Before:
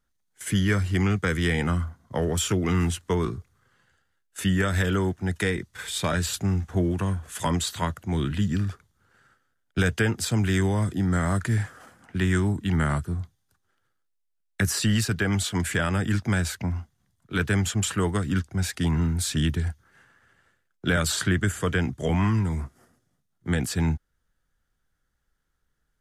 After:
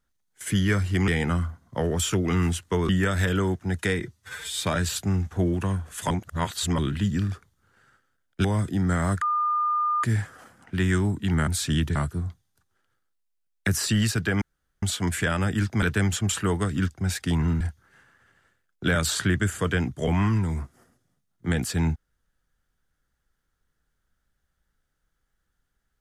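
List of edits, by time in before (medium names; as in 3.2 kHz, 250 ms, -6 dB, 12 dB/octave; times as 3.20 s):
1.08–1.46 s: delete
3.27–4.46 s: delete
5.59–5.98 s: stretch 1.5×
7.48–8.16 s: reverse
9.82–10.68 s: delete
11.45 s: add tone 1.21 kHz -21 dBFS 0.82 s
15.35 s: insert room tone 0.41 s
16.35–17.36 s: delete
19.14–19.62 s: move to 12.89 s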